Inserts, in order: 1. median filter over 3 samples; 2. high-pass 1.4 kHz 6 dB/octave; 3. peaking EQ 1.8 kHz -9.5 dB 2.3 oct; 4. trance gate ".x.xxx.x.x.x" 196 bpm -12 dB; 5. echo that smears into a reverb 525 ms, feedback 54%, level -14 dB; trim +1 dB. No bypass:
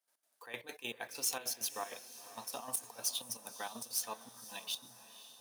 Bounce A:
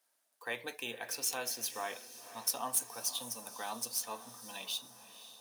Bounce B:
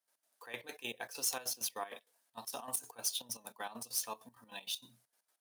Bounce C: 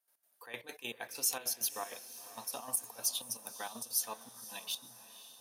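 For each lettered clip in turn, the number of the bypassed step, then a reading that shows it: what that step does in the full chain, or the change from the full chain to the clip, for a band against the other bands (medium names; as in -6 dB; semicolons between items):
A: 4, loudness change +2.5 LU; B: 5, echo-to-direct -12.5 dB to none; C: 1, momentary loudness spread change +1 LU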